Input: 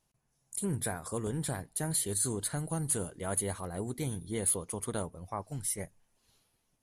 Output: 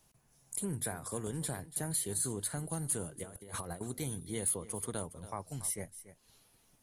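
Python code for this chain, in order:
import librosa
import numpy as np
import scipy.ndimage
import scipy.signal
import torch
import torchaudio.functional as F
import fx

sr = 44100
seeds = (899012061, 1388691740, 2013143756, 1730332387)

p1 = fx.high_shelf(x, sr, hz=9500.0, db=5.0)
p2 = fx.over_compress(p1, sr, threshold_db=-42.0, ratio=-0.5, at=(3.23, 3.81))
p3 = p2 + fx.echo_single(p2, sr, ms=283, db=-17.5, dry=0)
p4 = fx.band_squash(p3, sr, depth_pct=40)
y = p4 * librosa.db_to_amplitude(-4.0)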